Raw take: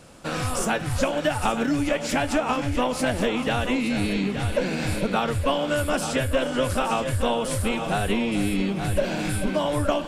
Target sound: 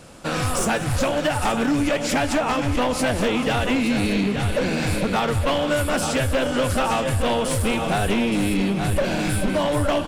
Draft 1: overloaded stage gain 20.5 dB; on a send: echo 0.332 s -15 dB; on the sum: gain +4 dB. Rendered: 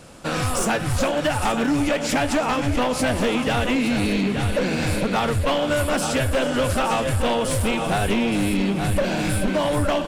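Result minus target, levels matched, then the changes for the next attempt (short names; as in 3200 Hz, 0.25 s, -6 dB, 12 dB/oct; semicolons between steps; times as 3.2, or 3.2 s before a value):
echo 0.137 s late
change: echo 0.195 s -15 dB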